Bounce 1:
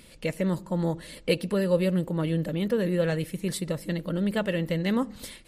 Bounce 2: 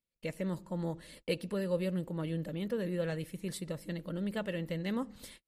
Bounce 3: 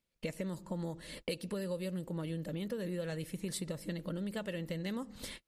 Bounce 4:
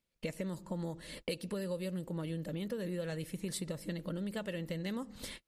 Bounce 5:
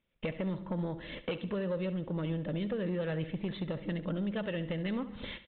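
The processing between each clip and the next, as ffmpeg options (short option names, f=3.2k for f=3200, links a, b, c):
-af "agate=range=-33dB:threshold=-44dB:ratio=16:detection=peak,volume=-9dB"
-filter_complex "[0:a]highshelf=f=8.9k:g=-9,acrossover=split=4900[a][b];[a]acompressor=threshold=-44dB:ratio=6[c];[c][b]amix=inputs=2:normalize=0,volume=8dB"
-af anull
-af "aeval=exprs='0.0668*sin(PI/2*2*val(0)/0.0668)':c=same,aecho=1:1:69|138|207|276:0.188|0.0904|0.0434|0.0208,aresample=8000,aresample=44100,volume=-4.5dB"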